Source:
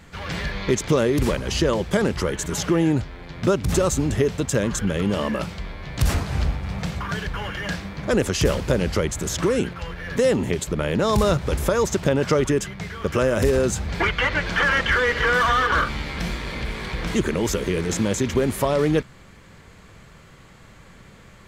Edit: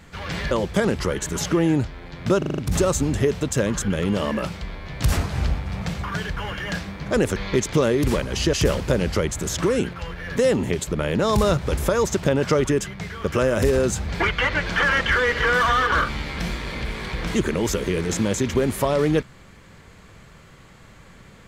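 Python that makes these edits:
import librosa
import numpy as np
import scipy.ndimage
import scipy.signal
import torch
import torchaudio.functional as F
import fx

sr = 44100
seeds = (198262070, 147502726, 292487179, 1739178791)

y = fx.edit(x, sr, fx.move(start_s=0.51, length_s=1.17, to_s=8.33),
    fx.stutter(start_s=3.55, slice_s=0.04, count=6), tone=tone)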